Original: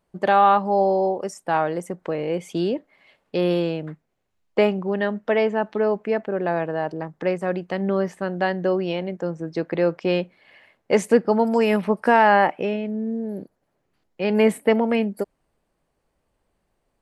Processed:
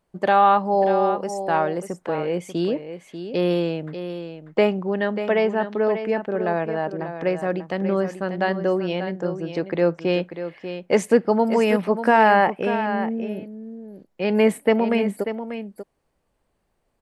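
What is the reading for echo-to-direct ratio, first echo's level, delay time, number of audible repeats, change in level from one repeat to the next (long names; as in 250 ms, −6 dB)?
−10.0 dB, −10.0 dB, 590 ms, 1, repeats not evenly spaced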